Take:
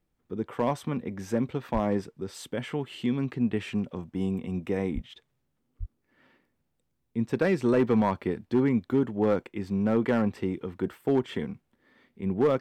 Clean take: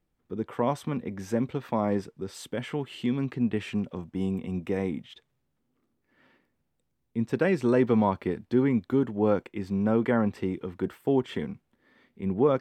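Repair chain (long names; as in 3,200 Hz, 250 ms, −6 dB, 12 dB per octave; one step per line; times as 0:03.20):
clipped peaks rebuilt −16 dBFS
0:01.73–0:01.85: high-pass filter 140 Hz 24 dB per octave
0:04.94–0:05.06: high-pass filter 140 Hz 24 dB per octave
0:05.79–0:05.91: high-pass filter 140 Hz 24 dB per octave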